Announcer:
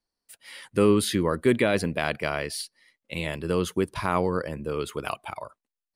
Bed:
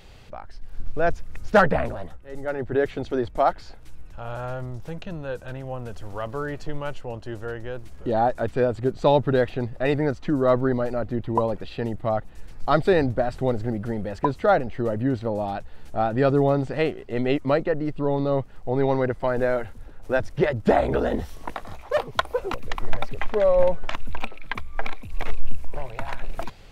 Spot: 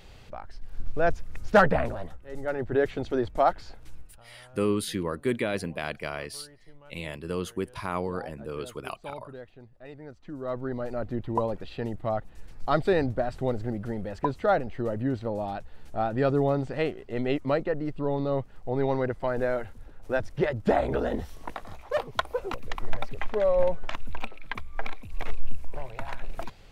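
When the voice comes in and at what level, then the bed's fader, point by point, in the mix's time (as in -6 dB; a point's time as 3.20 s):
3.80 s, -6.0 dB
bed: 3.98 s -2 dB
4.27 s -22.5 dB
9.94 s -22.5 dB
11.02 s -4.5 dB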